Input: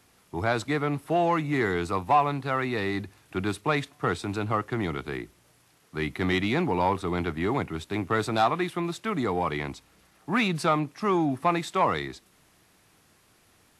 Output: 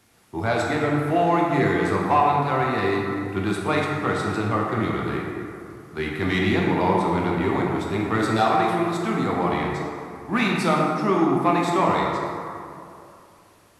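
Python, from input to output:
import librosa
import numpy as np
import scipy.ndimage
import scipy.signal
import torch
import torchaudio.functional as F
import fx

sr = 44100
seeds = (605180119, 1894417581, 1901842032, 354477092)

y = fx.rev_plate(x, sr, seeds[0], rt60_s=2.6, hf_ratio=0.45, predelay_ms=0, drr_db=-2.5)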